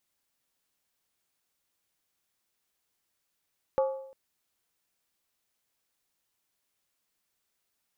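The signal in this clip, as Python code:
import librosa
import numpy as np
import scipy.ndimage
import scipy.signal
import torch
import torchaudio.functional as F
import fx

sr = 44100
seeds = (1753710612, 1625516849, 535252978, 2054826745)

y = fx.strike_skin(sr, length_s=0.35, level_db=-20.5, hz=534.0, decay_s=0.71, tilt_db=8, modes=5)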